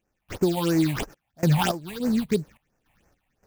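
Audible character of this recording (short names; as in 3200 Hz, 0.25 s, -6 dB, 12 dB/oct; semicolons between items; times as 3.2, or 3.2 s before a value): random-step tremolo, depth 95%; aliases and images of a low sample rate 4200 Hz, jitter 20%; phasing stages 6, 3 Hz, lowest notch 370–3600 Hz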